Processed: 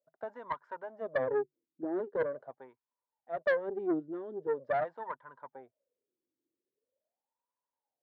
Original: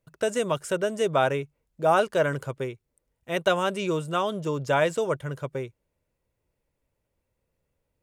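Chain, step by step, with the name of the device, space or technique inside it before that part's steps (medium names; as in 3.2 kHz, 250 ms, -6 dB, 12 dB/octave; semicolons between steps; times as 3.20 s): wah-wah guitar rig (wah-wah 0.43 Hz 320–1000 Hz, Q 12; valve stage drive 30 dB, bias 0.5; cabinet simulation 98–4500 Hz, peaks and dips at 250 Hz +9 dB, 1.7 kHz +9 dB, 2.7 kHz -10 dB); trim +5 dB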